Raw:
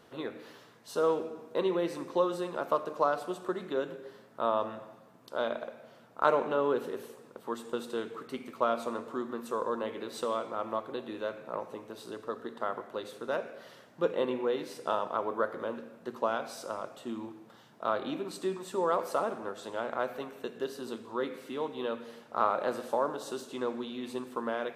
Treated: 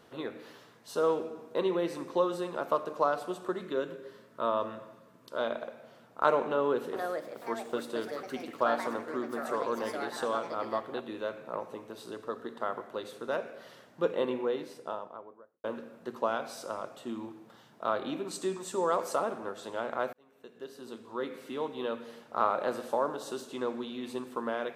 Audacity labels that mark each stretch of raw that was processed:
3.610000	5.410000	Butterworth band-stop 780 Hz, Q 4.1
6.440000	11.570000	ever faster or slower copies 489 ms, each echo +4 st, echoes 2, each echo -6 dB
14.240000	15.640000	studio fade out
18.270000	19.160000	peaking EQ 7.1 kHz +8 dB 0.91 oct
20.130000	21.510000	fade in

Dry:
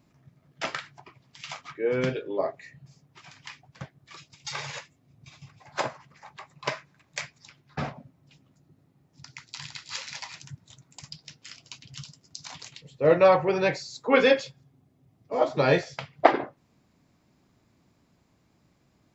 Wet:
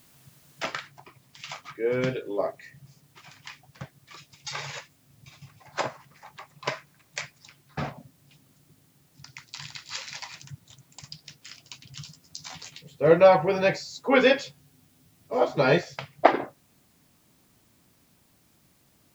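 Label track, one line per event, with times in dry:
0.660000	0.660000	noise floor step -59 dB -66 dB
12.000000	15.780000	doubling 12 ms -5.5 dB

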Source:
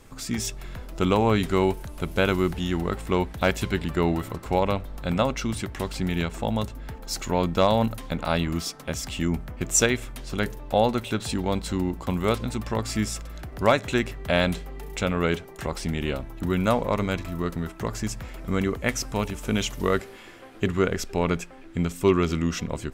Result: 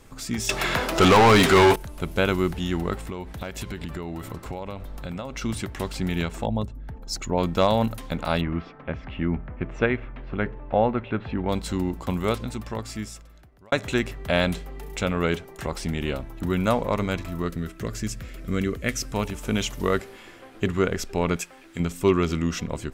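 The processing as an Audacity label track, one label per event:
0.490000	1.760000	overdrive pedal drive 30 dB, tone 5.1 kHz, clips at -8 dBFS
3.040000	5.420000	compression 12:1, threshold -28 dBFS
6.460000	7.380000	resonances exaggerated exponent 1.5
8.410000	11.490000	low-pass 2.4 kHz 24 dB/octave
12.100000	13.720000	fade out
17.480000	19.130000	peaking EQ 870 Hz -14.5 dB 0.59 oct
21.360000	21.800000	tilt EQ +2.5 dB/octave

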